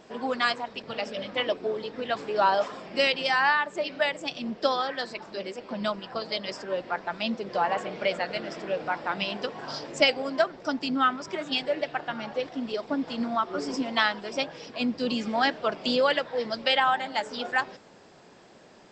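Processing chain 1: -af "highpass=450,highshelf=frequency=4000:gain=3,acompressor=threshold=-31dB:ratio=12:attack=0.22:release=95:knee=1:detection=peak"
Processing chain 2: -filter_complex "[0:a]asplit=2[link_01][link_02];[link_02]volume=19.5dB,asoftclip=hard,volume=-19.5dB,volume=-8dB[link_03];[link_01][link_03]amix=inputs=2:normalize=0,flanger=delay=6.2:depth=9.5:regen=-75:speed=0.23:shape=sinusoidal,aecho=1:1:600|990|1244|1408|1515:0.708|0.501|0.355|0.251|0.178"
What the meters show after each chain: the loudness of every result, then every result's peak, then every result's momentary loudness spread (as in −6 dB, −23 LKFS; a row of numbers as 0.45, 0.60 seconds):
−38.5, −27.0 LKFS; −27.5, −10.5 dBFS; 3, 7 LU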